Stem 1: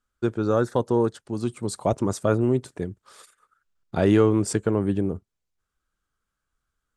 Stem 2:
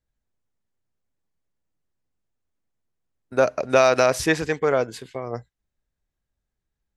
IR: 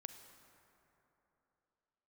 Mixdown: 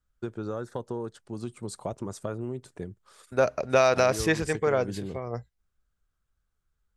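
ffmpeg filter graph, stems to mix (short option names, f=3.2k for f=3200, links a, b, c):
-filter_complex "[0:a]acompressor=threshold=-23dB:ratio=6,volume=-6dB[a];[1:a]lowshelf=f=110:g=10,volume=-4.5dB,asplit=2[b][c];[c]apad=whole_len=307100[d];[a][d]sidechaincompress=threshold=-25dB:ratio=8:attack=16:release=171[e];[e][b]amix=inputs=2:normalize=0,equalizer=f=280:t=o:w=0.24:g=-4.5"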